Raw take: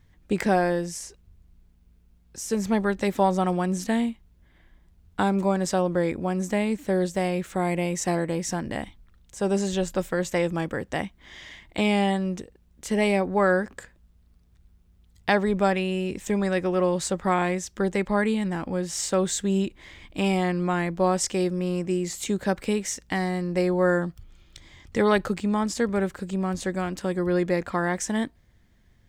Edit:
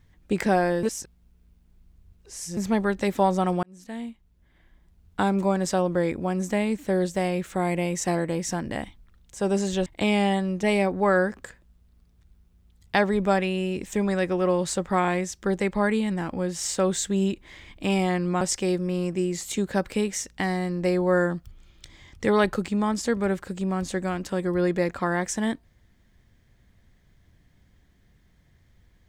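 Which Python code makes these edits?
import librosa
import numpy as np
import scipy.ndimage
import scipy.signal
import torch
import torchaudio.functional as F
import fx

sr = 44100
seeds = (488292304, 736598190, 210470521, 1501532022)

y = fx.edit(x, sr, fx.reverse_span(start_s=0.83, length_s=1.74),
    fx.fade_in_span(start_s=3.63, length_s=1.81, curve='qsin'),
    fx.cut(start_s=9.86, length_s=1.77),
    fx.cut(start_s=12.4, length_s=0.57),
    fx.cut(start_s=20.75, length_s=0.38), tone=tone)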